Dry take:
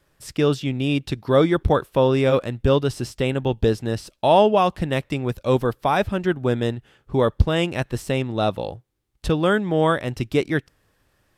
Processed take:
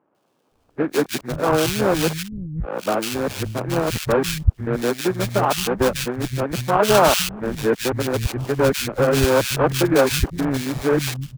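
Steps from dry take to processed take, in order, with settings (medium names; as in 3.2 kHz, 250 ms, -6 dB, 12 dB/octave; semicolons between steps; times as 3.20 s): reverse the whole clip; sample-rate reducer 2 kHz, jitter 20%; three bands offset in time mids, highs, lows 150/520 ms, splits 170/1900 Hz; trim +1.5 dB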